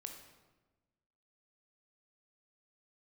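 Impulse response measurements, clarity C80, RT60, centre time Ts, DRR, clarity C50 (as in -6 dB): 8.0 dB, 1.2 s, 30 ms, 4.0 dB, 6.0 dB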